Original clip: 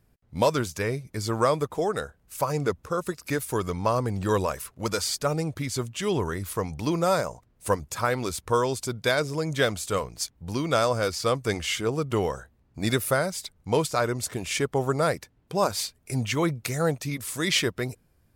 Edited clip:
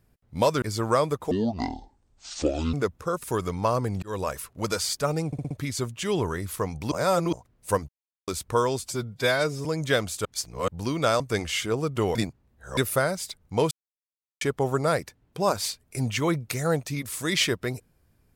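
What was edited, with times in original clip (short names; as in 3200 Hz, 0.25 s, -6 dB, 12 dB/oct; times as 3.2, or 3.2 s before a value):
0.62–1.12 cut
1.81–2.58 speed 54%
3.08–3.45 cut
4.24–4.52 fade in
5.48 stutter 0.06 s, 5 plays
6.89–7.3 reverse
7.86–8.25 mute
8.77–9.34 stretch 1.5×
9.94–10.37 reverse
10.89–11.35 cut
12.3–12.92 reverse
13.86–14.56 mute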